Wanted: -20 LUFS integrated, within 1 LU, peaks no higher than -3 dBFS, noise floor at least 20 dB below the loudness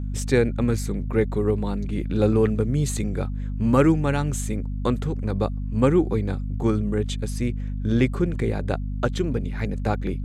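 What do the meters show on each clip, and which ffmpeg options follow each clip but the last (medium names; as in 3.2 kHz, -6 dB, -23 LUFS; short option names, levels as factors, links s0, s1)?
hum 50 Hz; highest harmonic 250 Hz; hum level -26 dBFS; loudness -24.0 LUFS; peak level -5.0 dBFS; loudness target -20.0 LUFS
-> -af "bandreject=f=50:t=h:w=6,bandreject=f=100:t=h:w=6,bandreject=f=150:t=h:w=6,bandreject=f=200:t=h:w=6,bandreject=f=250:t=h:w=6"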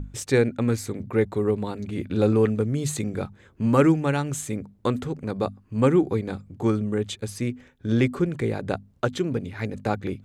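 hum not found; loudness -25.0 LUFS; peak level -6.0 dBFS; loudness target -20.0 LUFS
-> -af "volume=1.78,alimiter=limit=0.708:level=0:latency=1"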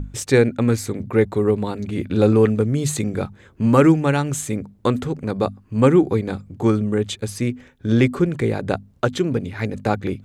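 loudness -20.5 LUFS; peak level -3.0 dBFS; noise floor -52 dBFS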